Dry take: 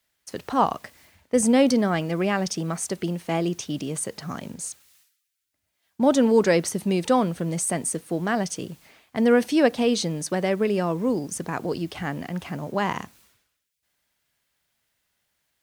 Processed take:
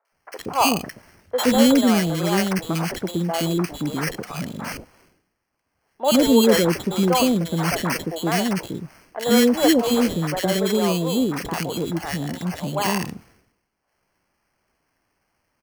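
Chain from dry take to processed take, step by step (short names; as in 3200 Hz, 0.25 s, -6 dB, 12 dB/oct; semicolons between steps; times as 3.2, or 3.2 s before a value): sample-and-hold 12×; three bands offset in time mids, highs, lows 50/120 ms, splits 490/1500 Hz; gain +4.5 dB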